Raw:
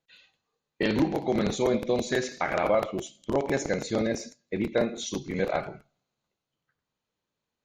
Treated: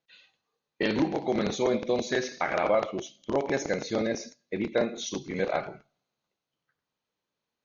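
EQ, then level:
linear-phase brick-wall low-pass 6,800 Hz
low-shelf EQ 130 Hz −9 dB
0.0 dB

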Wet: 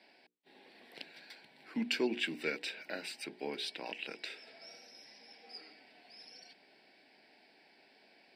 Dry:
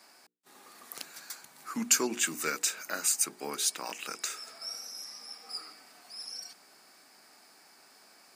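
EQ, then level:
high-pass filter 260 Hz 6 dB per octave
high-frequency loss of the air 160 metres
phaser with its sweep stopped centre 2,900 Hz, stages 4
+3.0 dB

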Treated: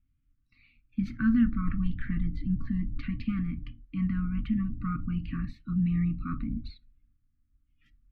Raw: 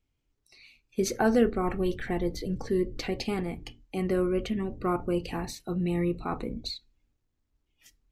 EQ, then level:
linear-phase brick-wall band-stop 310–1,100 Hz
high-frequency loss of the air 460 metres
spectral tilt −1.5 dB per octave
0.0 dB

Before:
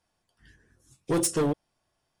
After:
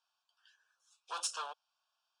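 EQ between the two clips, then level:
Bessel high-pass filter 1,400 Hz, order 6
Butterworth band-reject 2,000 Hz, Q 1.9
high-frequency loss of the air 120 metres
+2.5 dB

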